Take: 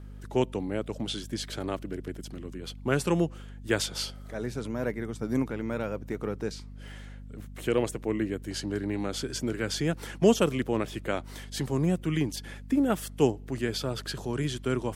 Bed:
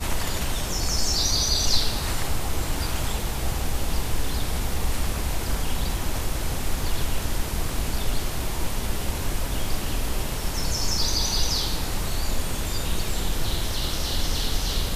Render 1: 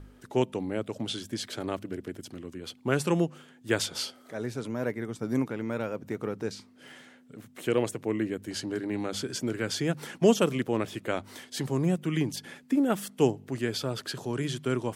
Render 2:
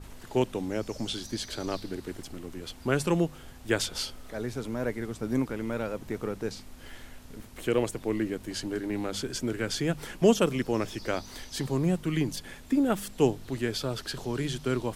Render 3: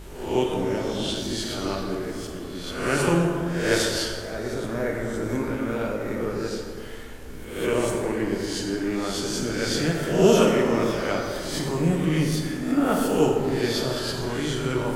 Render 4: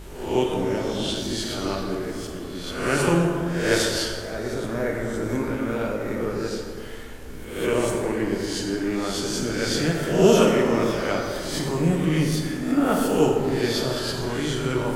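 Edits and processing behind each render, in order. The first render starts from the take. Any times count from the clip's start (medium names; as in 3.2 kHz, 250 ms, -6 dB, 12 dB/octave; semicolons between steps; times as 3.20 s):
de-hum 50 Hz, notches 4
add bed -23 dB
reverse spectral sustain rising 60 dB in 0.71 s; plate-style reverb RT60 2.1 s, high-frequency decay 0.45×, DRR -1 dB
trim +1 dB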